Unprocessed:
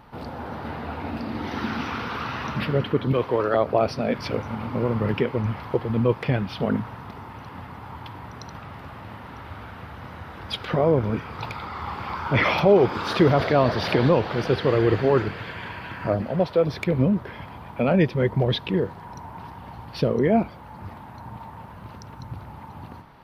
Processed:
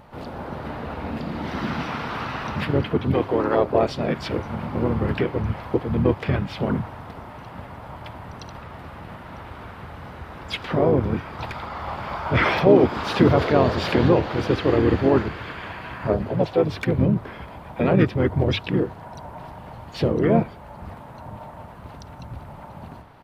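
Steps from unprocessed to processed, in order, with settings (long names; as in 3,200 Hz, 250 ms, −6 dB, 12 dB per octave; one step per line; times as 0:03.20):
pitch-shifted copies added −7 semitones −4 dB, −4 semitones −6 dB, +7 semitones −17 dB
mains-hum notches 50/100 Hz
level −1 dB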